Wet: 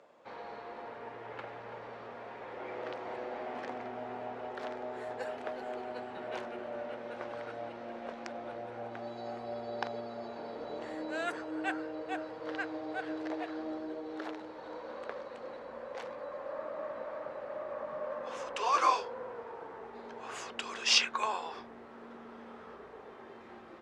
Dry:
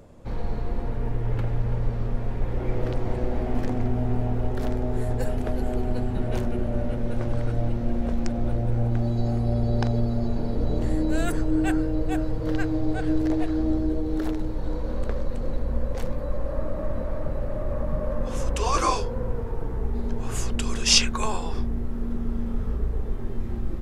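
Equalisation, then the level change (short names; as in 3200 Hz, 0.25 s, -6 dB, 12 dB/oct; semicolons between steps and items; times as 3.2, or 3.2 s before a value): HPF 700 Hz 12 dB/oct; Bessel low-pass 3100 Hz, order 2; -1.0 dB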